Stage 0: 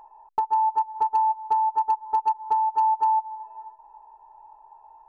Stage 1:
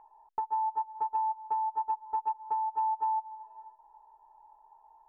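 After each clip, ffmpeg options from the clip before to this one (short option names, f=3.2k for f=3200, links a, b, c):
-af "lowpass=f=2.3k:w=0.5412,lowpass=f=2.3k:w=1.3066,volume=-8.5dB"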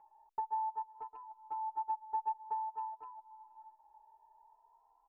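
-filter_complex "[0:a]asplit=2[a][b];[b]adelay=3.1,afreqshift=0.53[c];[a][c]amix=inputs=2:normalize=1,volume=-4dB"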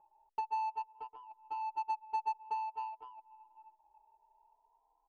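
-af "adynamicsmooth=sensitivity=7:basefreq=800,volume=1dB"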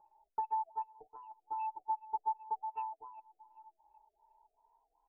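-af "afftfilt=real='re*lt(b*sr/1024,750*pow(2900/750,0.5+0.5*sin(2*PI*2.6*pts/sr)))':imag='im*lt(b*sr/1024,750*pow(2900/750,0.5+0.5*sin(2*PI*2.6*pts/sr)))':win_size=1024:overlap=0.75,volume=1dB"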